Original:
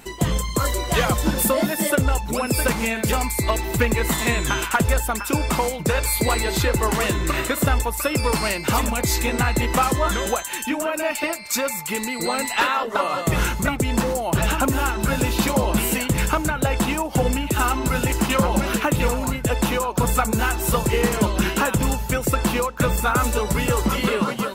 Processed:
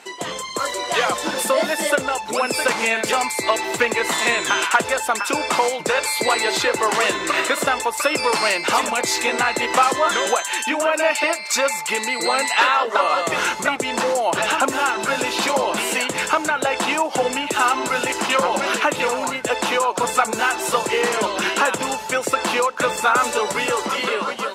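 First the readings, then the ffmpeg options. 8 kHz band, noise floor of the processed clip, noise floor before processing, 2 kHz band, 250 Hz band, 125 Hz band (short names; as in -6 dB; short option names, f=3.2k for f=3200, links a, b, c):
+1.0 dB, -30 dBFS, -30 dBFS, +5.0 dB, -6.0 dB, -17.5 dB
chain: -filter_complex "[0:a]asplit=2[a][b];[b]alimiter=limit=-15dB:level=0:latency=1:release=86,volume=2dB[c];[a][c]amix=inputs=2:normalize=0,acrusher=bits=9:dc=4:mix=0:aa=0.000001,dynaudnorm=f=140:g=13:m=11.5dB,highpass=460,lowpass=7.4k,volume=-4dB"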